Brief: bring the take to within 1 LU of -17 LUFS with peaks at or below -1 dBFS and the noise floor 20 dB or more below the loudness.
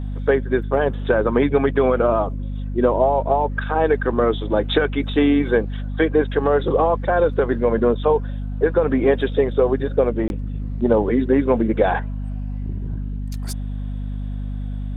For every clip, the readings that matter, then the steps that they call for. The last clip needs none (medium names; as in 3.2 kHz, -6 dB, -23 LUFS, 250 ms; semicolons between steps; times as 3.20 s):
dropouts 1; longest dropout 21 ms; hum 50 Hz; highest harmonic 250 Hz; hum level -24 dBFS; loudness -20.5 LUFS; peak level -4.5 dBFS; loudness target -17.0 LUFS
-> interpolate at 10.28 s, 21 ms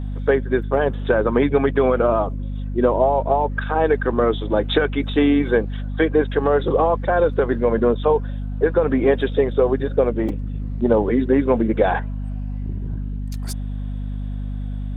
dropouts 0; hum 50 Hz; highest harmonic 250 Hz; hum level -24 dBFS
-> de-hum 50 Hz, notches 5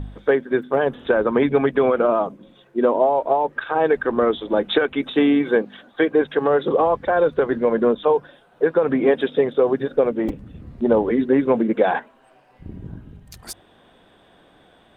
hum not found; loudness -20.0 LUFS; peak level -5.0 dBFS; loudness target -17.0 LUFS
-> trim +3 dB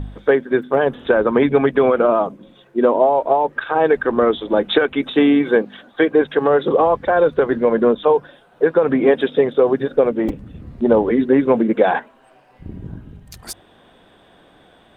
loudness -17.0 LUFS; peak level -2.0 dBFS; noise floor -52 dBFS